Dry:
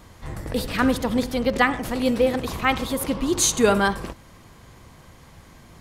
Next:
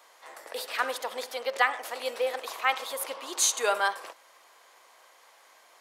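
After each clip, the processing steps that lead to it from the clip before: high-pass 550 Hz 24 dB/octave; trim -4 dB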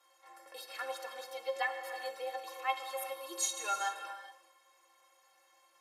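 inharmonic resonator 160 Hz, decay 0.25 s, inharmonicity 0.03; gated-style reverb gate 450 ms flat, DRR 7 dB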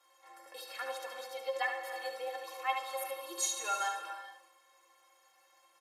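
delay 73 ms -7 dB

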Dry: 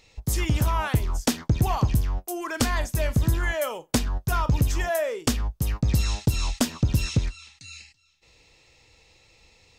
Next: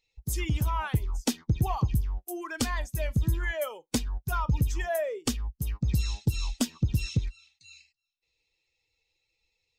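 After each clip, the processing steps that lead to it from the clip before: expander on every frequency bin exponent 1.5; trim -2.5 dB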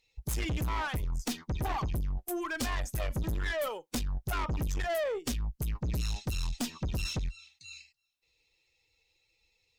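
valve stage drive 34 dB, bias 0.3; trim +5 dB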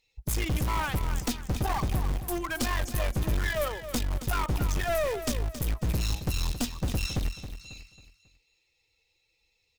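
in parallel at -5.5 dB: bit crusher 5-bit; on the sum: feedback delay 272 ms, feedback 38%, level -11 dB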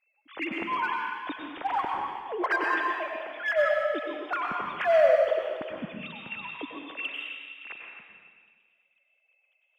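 formants replaced by sine waves; in parallel at -6 dB: hard clipper -23 dBFS, distortion -6 dB; on the sum: plate-style reverb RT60 1.5 s, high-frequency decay 0.95×, pre-delay 85 ms, DRR 0 dB; trim -6 dB

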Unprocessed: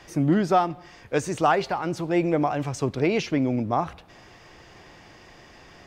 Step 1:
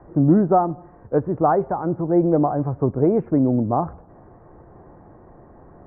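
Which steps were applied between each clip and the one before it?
Bessel low-pass 760 Hz, order 8; trim +6 dB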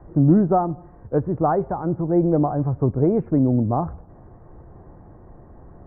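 bass shelf 140 Hz +11 dB; trim -3 dB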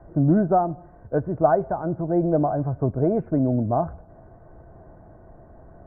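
small resonant body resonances 650/1500 Hz, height 12 dB, ringing for 45 ms; trim -3.5 dB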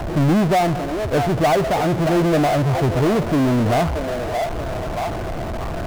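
repeats whose band climbs or falls 626 ms, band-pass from 600 Hz, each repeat 0.7 oct, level -11.5 dB; power-law waveshaper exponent 0.35; trim -4.5 dB

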